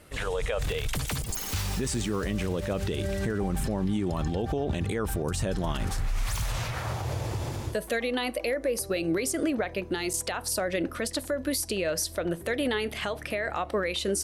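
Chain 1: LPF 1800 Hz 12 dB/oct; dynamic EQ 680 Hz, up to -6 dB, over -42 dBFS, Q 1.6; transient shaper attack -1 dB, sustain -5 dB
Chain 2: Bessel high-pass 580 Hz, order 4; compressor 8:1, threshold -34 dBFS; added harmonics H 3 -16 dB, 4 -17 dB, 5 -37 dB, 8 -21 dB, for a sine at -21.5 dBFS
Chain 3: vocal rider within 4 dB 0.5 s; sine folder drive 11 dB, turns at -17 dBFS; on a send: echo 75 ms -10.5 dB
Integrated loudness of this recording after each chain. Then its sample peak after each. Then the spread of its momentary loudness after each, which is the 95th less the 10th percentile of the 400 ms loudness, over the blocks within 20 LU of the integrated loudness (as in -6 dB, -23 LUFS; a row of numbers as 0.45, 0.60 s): -33.0, -39.5, -20.5 LUFS; -20.0, -20.0, -13.0 dBFS; 5, 3, 2 LU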